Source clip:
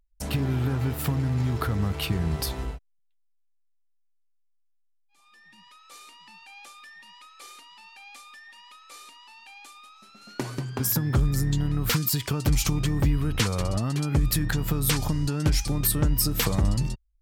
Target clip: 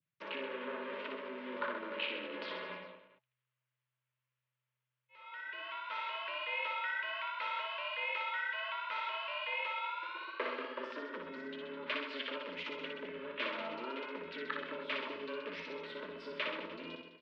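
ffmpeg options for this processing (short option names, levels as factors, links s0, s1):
-af "adynamicequalizer=threshold=0.00501:dfrequency=1100:dqfactor=0.91:tfrequency=1100:tqfactor=0.91:attack=5:release=100:ratio=0.375:range=2.5:mode=cutabove:tftype=bell,areverse,acompressor=threshold=0.0141:ratio=6,areverse,aeval=exprs='val(0)*sin(2*PI*210*n/s)':c=same,asuperstop=centerf=840:order=20:qfactor=4.7,aecho=1:1:60|129|208.4|299.6|404.5:0.631|0.398|0.251|0.158|0.1,highpass=f=600:t=q:w=0.5412,highpass=f=600:t=q:w=1.307,lowpass=f=3200:t=q:w=0.5176,lowpass=f=3200:t=q:w=0.7071,lowpass=f=3200:t=q:w=1.932,afreqshift=-83,volume=3.98"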